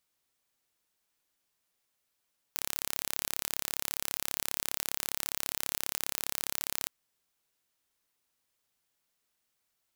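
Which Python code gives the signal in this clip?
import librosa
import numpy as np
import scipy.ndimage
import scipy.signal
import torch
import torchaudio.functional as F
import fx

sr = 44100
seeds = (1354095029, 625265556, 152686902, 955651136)

y = 10.0 ** (-5.0 / 20.0) * (np.mod(np.arange(round(4.33 * sr)), round(sr / 34.8)) == 0)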